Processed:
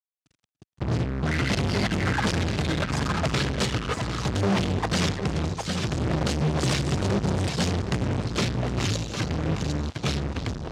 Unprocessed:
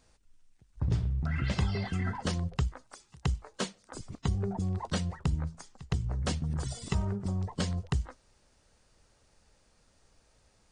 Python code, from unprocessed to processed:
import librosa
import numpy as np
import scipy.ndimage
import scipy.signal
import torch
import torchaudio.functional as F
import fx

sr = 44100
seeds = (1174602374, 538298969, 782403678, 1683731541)

y = fx.level_steps(x, sr, step_db=19)
y = fx.peak_eq(y, sr, hz=1000.0, db=-8.5, octaves=0.48)
y = fx.echo_pitch(y, sr, ms=483, semitones=-4, count=2, db_per_echo=-3.0)
y = fx.echo_feedback(y, sr, ms=757, feedback_pct=18, wet_db=-11.0)
y = fx.fuzz(y, sr, gain_db=51.0, gate_db=-55.0)
y = fx.bandpass_edges(y, sr, low_hz=100.0, high_hz=6900.0)
y = y + 10.0 ** (-22.5 / 20.0) * np.pad(y, (int(290 * sr / 1000.0), 0))[:len(y)]
y = fx.upward_expand(y, sr, threshold_db=-33.0, expansion=1.5)
y = y * librosa.db_to_amplitude(-6.0)